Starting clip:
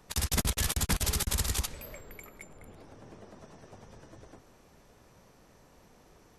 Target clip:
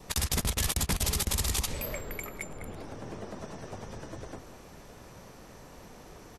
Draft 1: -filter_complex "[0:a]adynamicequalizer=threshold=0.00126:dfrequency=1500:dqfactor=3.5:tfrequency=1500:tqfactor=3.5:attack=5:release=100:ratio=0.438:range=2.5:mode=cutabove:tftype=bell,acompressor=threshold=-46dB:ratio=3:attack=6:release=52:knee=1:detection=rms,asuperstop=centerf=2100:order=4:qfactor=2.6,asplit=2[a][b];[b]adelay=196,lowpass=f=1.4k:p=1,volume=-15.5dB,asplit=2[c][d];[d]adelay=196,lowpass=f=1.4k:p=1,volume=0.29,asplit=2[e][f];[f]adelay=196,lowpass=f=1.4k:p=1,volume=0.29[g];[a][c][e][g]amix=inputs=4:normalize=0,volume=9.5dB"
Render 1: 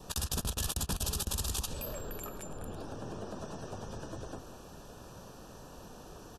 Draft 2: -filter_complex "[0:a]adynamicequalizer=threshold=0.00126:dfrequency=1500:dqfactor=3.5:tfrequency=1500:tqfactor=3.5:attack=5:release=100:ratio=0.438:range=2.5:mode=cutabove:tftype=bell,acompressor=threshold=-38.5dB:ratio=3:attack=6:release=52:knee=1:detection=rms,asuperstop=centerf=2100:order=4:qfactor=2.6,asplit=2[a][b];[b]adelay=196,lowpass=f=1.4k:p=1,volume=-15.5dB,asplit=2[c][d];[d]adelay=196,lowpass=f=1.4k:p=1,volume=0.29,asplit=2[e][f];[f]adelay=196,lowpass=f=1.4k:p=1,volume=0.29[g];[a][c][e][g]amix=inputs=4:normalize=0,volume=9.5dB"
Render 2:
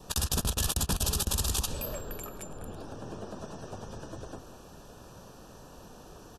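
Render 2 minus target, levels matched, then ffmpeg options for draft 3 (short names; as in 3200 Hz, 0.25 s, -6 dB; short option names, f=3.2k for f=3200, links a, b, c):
2000 Hz band -5.0 dB
-filter_complex "[0:a]adynamicequalizer=threshold=0.00126:dfrequency=1500:dqfactor=3.5:tfrequency=1500:tqfactor=3.5:attack=5:release=100:ratio=0.438:range=2.5:mode=cutabove:tftype=bell,acompressor=threshold=-38.5dB:ratio=3:attack=6:release=52:knee=1:detection=rms,asplit=2[a][b];[b]adelay=196,lowpass=f=1.4k:p=1,volume=-15.5dB,asplit=2[c][d];[d]adelay=196,lowpass=f=1.4k:p=1,volume=0.29,asplit=2[e][f];[f]adelay=196,lowpass=f=1.4k:p=1,volume=0.29[g];[a][c][e][g]amix=inputs=4:normalize=0,volume=9.5dB"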